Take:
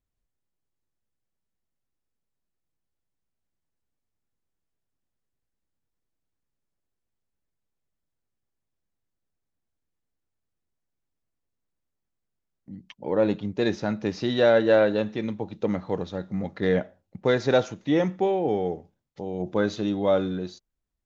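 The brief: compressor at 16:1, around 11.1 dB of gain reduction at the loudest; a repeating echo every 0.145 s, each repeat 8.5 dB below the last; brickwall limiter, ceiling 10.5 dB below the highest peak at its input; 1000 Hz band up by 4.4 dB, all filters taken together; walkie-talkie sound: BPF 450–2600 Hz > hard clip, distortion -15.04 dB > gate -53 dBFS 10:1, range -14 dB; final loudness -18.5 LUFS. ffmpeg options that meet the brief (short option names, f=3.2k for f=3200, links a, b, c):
-af "equalizer=f=1k:t=o:g=7,acompressor=threshold=-23dB:ratio=16,alimiter=limit=-21.5dB:level=0:latency=1,highpass=450,lowpass=2.6k,aecho=1:1:145|290|435|580:0.376|0.143|0.0543|0.0206,asoftclip=type=hard:threshold=-29dB,agate=range=-14dB:threshold=-53dB:ratio=10,volume=19dB"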